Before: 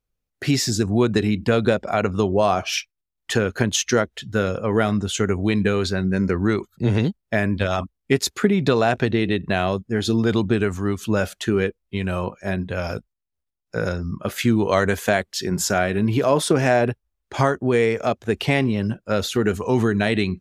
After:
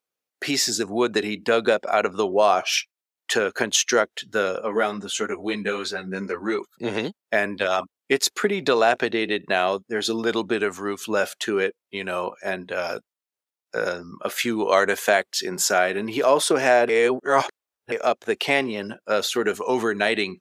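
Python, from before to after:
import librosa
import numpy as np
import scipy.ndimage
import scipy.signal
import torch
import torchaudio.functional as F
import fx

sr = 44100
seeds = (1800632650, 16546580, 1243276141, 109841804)

y = fx.ensemble(x, sr, at=(4.61, 6.59))
y = fx.edit(y, sr, fx.reverse_span(start_s=16.89, length_s=1.03), tone=tone)
y = scipy.signal.sosfilt(scipy.signal.butter(2, 420.0, 'highpass', fs=sr, output='sos'), y)
y = F.gain(torch.from_numpy(y), 2.0).numpy()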